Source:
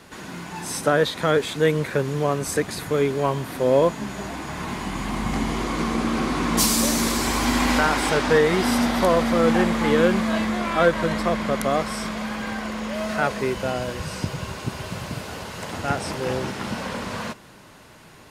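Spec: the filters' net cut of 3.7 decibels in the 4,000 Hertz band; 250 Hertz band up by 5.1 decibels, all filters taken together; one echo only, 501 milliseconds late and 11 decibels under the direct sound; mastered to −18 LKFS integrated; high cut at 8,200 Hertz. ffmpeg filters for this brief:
ffmpeg -i in.wav -af "lowpass=8200,equalizer=frequency=250:width_type=o:gain=6,equalizer=frequency=4000:width_type=o:gain=-4.5,aecho=1:1:501:0.282,volume=2.5dB" out.wav

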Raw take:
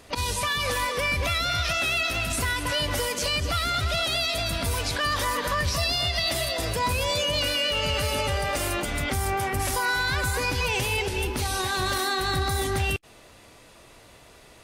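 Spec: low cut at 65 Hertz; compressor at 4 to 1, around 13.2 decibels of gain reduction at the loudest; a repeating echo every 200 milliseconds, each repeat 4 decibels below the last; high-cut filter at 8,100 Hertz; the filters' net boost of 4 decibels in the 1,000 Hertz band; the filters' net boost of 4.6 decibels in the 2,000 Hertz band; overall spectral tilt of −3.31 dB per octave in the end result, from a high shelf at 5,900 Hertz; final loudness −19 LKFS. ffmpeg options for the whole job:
ffmpeg -i in.wav -af "highpass=65,lowpass=8100,equalizer=frequency=1000:width_type=o:gain=3.5,equalizer=frequency=2000:width_type=o:gain=6,highshelf=frequency=5900:gain=-7,acompressor=threshold=-35dB:ratio=4,aecho=1:1:200|400|600|800|1000|1200|1400|1600|1800:0.631|0.398|0.25|0.158|0.0994|0.0626|0.0394|0.0249|0.0157,volume=13.5dB" out.wav

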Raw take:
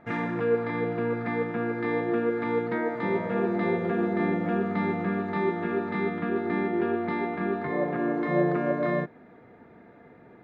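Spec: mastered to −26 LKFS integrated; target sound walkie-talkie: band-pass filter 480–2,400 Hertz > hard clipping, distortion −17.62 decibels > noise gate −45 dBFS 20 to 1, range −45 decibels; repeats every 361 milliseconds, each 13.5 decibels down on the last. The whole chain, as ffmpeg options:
ffmpeg -i in.wav -af "highpass=480,lowpass=2400,aecho=1:1:361|722:0.211|0.0444,asoftclip=type=hard:threshold=-25dB,agate=range=-45dB:threshold=-45dB:ratio=20,volume=6.5dB" out.wav

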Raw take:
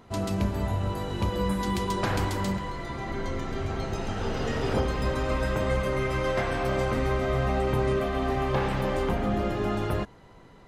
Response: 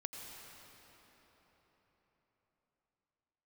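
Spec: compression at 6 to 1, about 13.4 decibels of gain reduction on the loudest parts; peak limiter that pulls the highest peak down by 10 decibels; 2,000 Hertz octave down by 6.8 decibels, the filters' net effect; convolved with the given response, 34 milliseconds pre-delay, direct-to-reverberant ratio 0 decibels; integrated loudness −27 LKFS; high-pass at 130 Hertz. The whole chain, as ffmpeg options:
-filter_complex "[0:a]highpass=130,equalizer=frequency=2000:width_type=o:gain=-9,acompressor=threshold=-38dB:ratio=6,alimiter=level_in=13.5dB:limit=-24dB:level=0:latency=1,volume=-13.5dB,asplit=2[link_01][link_02];[1:a]atrim=start_sample=2205,adelay=34[link_03];[link_02][link_03]afir=irnorm=-1:irlink=0,volume=1.5dB[link_04];[link_01][link_04]amix=inputs=2:normalize=0,volume=16.5dB"

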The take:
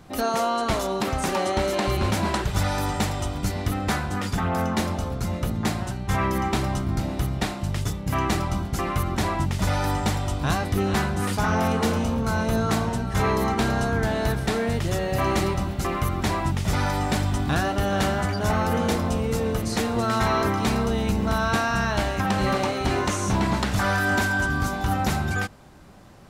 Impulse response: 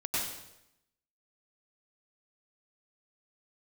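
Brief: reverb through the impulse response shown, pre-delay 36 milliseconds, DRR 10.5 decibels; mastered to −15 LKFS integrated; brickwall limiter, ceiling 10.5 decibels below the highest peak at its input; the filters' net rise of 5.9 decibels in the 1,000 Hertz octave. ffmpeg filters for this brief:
-filter_complex "[0:a]equalizer=frequency=1000:width_type=o:gain=7.5,alimiter=limit=-17dB:level=0:latency=1,asplit=2[link_01][link_02];[1:a]atrim=start_sample=2205,adelay=36[link_03];[link_02][link_03]afir=irnorm=-1:irlink=0,volume=-17dB[link_04];[link_01][link_04]amix=inputs=2:normalize=0,volume=10.5dB"

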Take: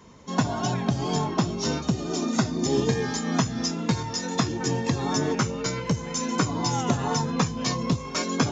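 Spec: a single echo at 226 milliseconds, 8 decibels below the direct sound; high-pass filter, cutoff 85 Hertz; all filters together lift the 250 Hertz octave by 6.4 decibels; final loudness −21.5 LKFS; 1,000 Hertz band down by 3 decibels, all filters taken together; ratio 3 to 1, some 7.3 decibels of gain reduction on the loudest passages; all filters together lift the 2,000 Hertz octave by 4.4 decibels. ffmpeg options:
ffmpeg -i in.wav -af "highpass=85,equalizer=frequency=250:width_type=o:gain=8,equalizer=frequency=1000:width_type=o:gain=-6,equalizer=frequency=2000:width_type=o:gain=7.5,acompressor=threshold=-23dB:ratio=3,aecho=1:1:226:0.398,volume=4.5dB" out.wav

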